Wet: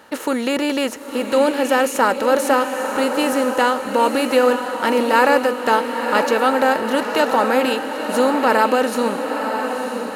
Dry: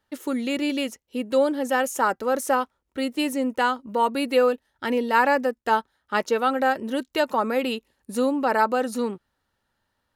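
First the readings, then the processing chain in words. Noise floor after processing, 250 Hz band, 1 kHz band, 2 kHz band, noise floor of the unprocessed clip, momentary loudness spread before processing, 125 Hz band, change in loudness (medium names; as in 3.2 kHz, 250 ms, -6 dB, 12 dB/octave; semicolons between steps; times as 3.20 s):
-29 dBFS, +5.5 dB, +6.0 dB, +6.5 dB, -77 dBFS, 9 LU, no reading, +6.0 dB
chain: spectral levelling over time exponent 0.6; high-pass 45 Hz; on a send: echo that smears into a reverb 964 ms, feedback 54%, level -6.5 dB; on the sum: trim +2 dB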